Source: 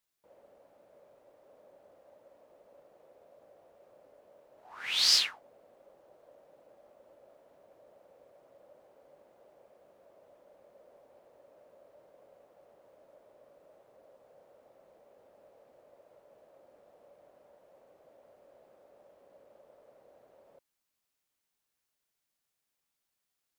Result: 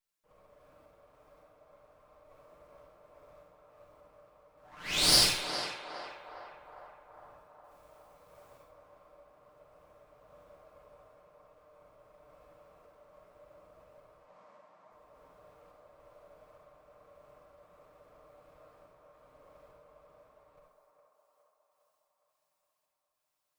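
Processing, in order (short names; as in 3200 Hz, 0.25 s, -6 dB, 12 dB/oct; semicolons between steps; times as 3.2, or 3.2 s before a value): minimum comb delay 6.6 ms; 7.64–8.63 high shelf 3800 Hz +10.5 dB; random-step tremolo; 14.19–14.91 speaker cabinet 210–7600 Hz, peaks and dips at 210 Hz +7 dB, 440 Hz -9 dB, 940 Hz +7 dB, 1900 Hz +4 dB; narrowing echo 0.41 s, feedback 68%, band-pass 890 Hz, level -3.5 dB; reverb RT60 0.50 s, pre-delay 38 ms, DRR -1 dB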